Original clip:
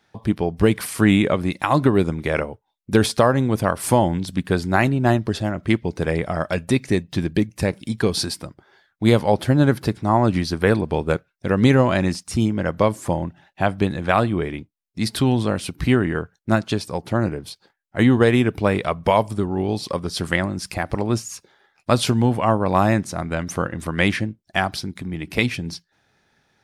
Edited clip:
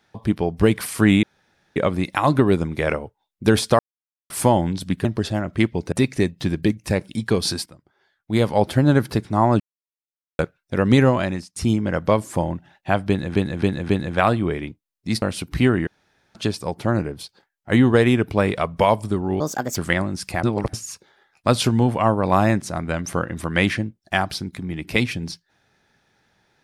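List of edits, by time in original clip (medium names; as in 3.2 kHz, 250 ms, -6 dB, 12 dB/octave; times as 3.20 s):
1.23 s: insert room tone 0.53 s
3.26–3.77 s: mute
4.52–5.15 s: delete
6.02–6.64 s: delete
8.38–9.34 s: fade in quadratic, from -12.5 dB
10.32–11.11 s: mute
11.77–12.28 s: fade out, to -18.5 dB
13.80–14.07 s: loop, 4 plays
15.13–15.49 s: delete
16.14–16.62 s: room tone
19.67–20.19 s: speed 143%
20.86–21.16 s: reverse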